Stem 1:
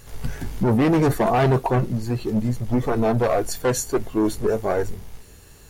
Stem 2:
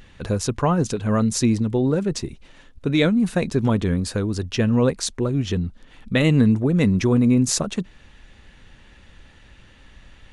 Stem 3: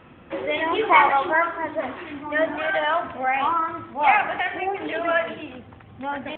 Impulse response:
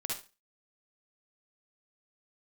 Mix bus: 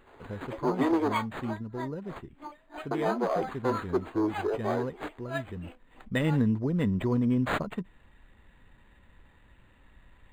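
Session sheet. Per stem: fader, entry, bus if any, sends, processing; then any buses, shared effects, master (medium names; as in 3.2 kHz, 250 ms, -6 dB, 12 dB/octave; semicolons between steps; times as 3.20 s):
-3.5 dB, 0.00 s, muted 1.17–2.91 s, no send, rippled Chebyshev high-pass 250 Hz, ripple 6 dB; treble shelf 7.5 kHz -6.5 dB
5.61 s -16 dB -> 5.98 s -9 dB, 0.00 s, no send, resonant low-pass 6.9 kHz, resonance Q 2.6; peaking EQ 4.1 kHz -5.5 dB 0.84 oct; small resonant body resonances 990/1900 Hz, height 9 dB
-1.5 dB, 0.20 s, no send, high-pass 290 Hz; compression 1.5:1, threshold -42 dBFS, peak gain reduction 11.5 dB; logarithmic tremolo 3.1 Hz, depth 39 dB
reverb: none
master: decimation joined by straight lines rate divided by 8×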